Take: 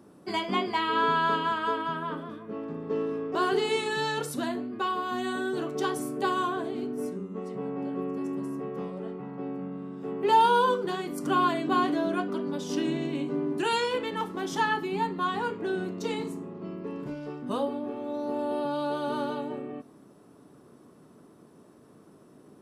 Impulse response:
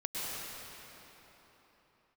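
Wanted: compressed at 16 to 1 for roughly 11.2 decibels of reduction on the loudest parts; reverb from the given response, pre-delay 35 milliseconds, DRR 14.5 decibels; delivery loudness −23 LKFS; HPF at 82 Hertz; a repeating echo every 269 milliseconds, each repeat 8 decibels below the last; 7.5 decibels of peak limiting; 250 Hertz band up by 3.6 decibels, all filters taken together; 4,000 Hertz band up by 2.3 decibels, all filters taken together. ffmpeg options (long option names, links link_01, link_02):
-filter_complex "[0:a]highpass=82,equalizer=frequency=250:width_type=o:gain=4.5,equalizer=frequency=4000:width_type=o:gain=3,acompressor=threshold=-27dB:ratio=16,alimiter=level_in=3dB:limit=-24dB:level=0:latency=1,volume=-3dB,aecho=1:1:269|538|807|1076|1345:0.398|0.159|0.0637|0.0255|0.0102,asplit=2[link_01][link_02];[1:a]atrim=start_sample=2205,adelay=35[link_03];[link_02][link_03]afir=irnorm=-1:irlink=0,volume=-19.5dB[link_04];[link_01][link_04]amix=inputs=2:normalize=0,volume=12dB"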